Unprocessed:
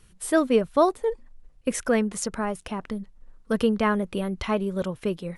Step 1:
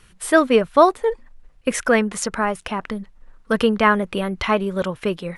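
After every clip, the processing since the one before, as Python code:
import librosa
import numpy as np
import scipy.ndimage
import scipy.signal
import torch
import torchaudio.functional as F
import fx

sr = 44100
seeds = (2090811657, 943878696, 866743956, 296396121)

y = fx.peak_eq(x, sr, hz=1700.0, db=8.0, octaves=2.8)
y = F.gain(torch.from_numpy(y), 2.5).numpy()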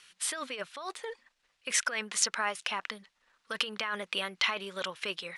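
y = fx.over_compress(x, sr, threshold_db=-20.0, ratio=-1.0)
y = fx.bandpass_q(y, sr, hz=4200.0, q=0.88)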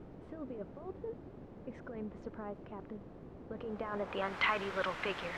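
y = fx.quant_dither(x, sr, seeds[0], bits=6, dither='triangular')
y = fx.filter_sweep_lowpass(y, sr, from_hz=360.0, to_hz=1700.0, start_s=3.49, end_s=4.45, q=0.94)
y = F.gain(torch.from_numpy(y), 1.5).numpy()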